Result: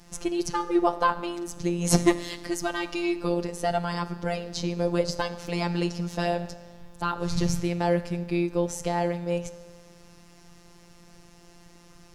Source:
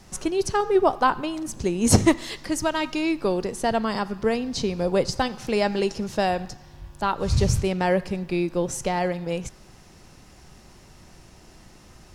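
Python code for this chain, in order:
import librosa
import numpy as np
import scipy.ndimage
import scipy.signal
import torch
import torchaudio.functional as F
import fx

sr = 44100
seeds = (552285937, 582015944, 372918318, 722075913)

y = fx.dynamic_eq(x, sr, hz=8700.0, q=3.7, threshold_db=-50.0, ratio=4.0, max_db=-4)
y = fx.rev_fdn(y, sr, rt60_s=1.5, lf_ratio=1.0, hf_ratio=0.75, size_ms=11.0, drr_db=13.5)
y = fx.robotise(y, sr, hz=173.0)
y = F.gain(torch.from_numpy(y), -1.0).numpy()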